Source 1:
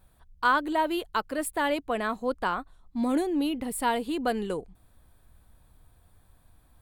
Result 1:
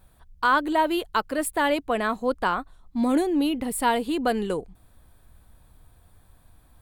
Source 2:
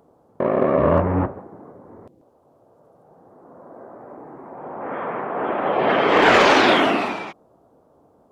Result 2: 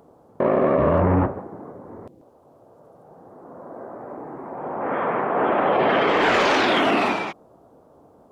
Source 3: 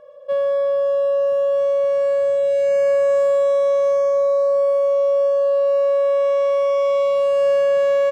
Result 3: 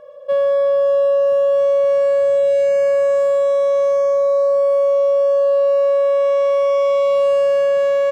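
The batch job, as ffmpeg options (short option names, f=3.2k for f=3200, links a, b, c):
-af "alimiter=limit=-15dB:level=0:latency=1:release=15,volume=4dB"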